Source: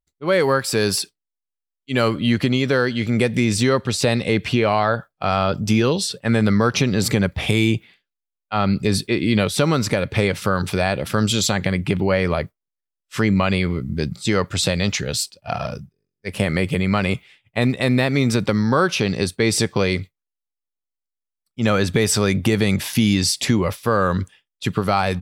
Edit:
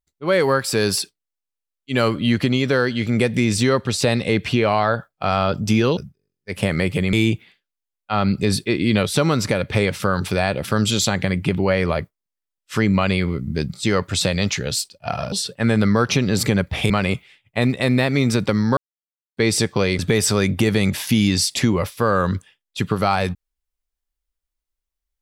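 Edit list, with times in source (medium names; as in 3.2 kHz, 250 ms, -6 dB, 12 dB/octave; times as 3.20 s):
5.97–7.55 s: swap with 15.74–16.90 s
18.77–19.37 s: mute
19.99–21.85 s: delete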